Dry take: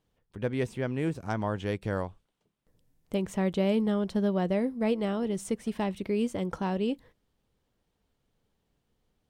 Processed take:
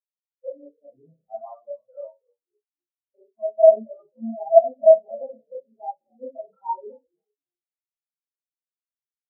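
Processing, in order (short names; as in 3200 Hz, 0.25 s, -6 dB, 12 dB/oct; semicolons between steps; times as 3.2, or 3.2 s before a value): trilling pitch shifter +2 st, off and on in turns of 0.461 s; overloaded stage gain 21 dB; HPF 140 Hz 12 dB/oct; band shelf 850 Hz +11 dB; notches 50/100/150/200/250/300/350/400/450/500 Hz; comb 7.5 ms, depth 73%; frequency-shifting echo 0.263 s, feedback 52%, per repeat -69 Hz, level -9 dB; reverb RT60 0.60 s, pre-delay 31 ms, DRR -2.5 dB; spectral expander 4:1; gain +2 dB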